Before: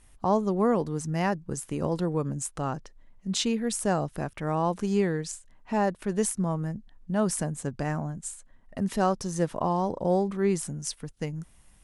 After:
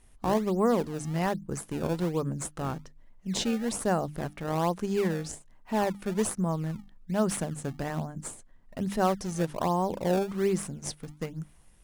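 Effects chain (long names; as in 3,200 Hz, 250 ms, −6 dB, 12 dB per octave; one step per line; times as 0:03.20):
mains-hum notches 50/100/150/200/250/300 Hz
in parallel at −7 dB: sample-and-hold swept by an LFO 25×, swing 160% 1.2 Hz
on the sum: level −3.5 dB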